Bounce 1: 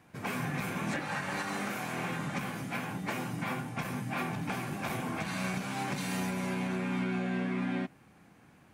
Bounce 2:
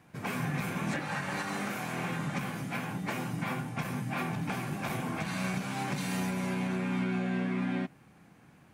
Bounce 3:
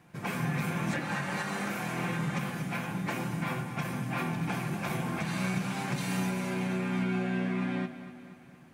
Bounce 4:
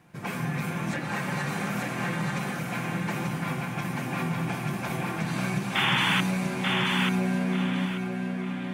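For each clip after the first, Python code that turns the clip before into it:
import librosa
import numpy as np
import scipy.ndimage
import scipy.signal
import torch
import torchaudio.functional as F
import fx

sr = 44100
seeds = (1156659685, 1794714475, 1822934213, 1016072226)

y1 = fx.peak_eq(x, sr, hz=150.0, db=3.5, octaves=0.65)
y2 = fx.echo_feedback(y1, sr, ms=240, feedback_pct=55, wet_db=-13.0)
y2 = fx.room_shoebox(y2, sr, seeds[0], volume_m3=3800.0, walls='furnished', distance_m=0.84)
y3 = fx.spec_paint(y2, sr, seeds[1], shape='noise', start_s=5.75, length_s=0.46, low_hz=790.0, high_hz=3600.0, level_db=-26.0)
y3 = fx.echo_feedback(y3, sr, ms=886, feedback_pct=27, wet_db=-3)
y3 = y3 * librosa.db_to_amplitude(1.0)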